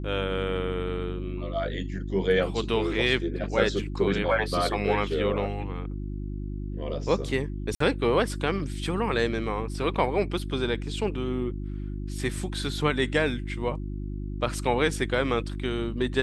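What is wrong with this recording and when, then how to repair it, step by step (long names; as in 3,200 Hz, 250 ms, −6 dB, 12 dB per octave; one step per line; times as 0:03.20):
mains hum 50 Hz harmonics 7 −33 dBFS
0:07.75–0:07.80: drop-out 54 ms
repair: hum removal 50 Hz, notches 7
repair the gap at 0:07.75, 54 ms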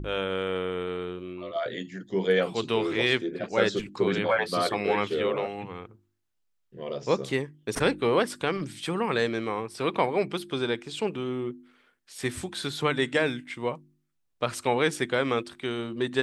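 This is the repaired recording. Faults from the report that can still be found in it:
none of them is left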